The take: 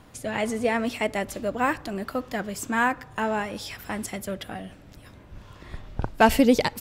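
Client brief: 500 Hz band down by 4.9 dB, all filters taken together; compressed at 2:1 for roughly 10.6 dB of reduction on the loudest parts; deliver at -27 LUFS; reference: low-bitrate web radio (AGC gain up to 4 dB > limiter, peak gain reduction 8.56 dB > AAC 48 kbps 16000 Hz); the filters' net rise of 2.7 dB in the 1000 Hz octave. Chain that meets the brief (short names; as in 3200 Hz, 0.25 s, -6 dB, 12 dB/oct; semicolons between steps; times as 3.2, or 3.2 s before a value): bell 500 Hz -8.5 dB; bell 1000 Hz +6 dB; compressor 2:1, threshold -30 dBFS; AGC gain up to 4 dB; limiter -22 dBFS; gain +7.5 dB; AAC 48 kbps 16000 Hz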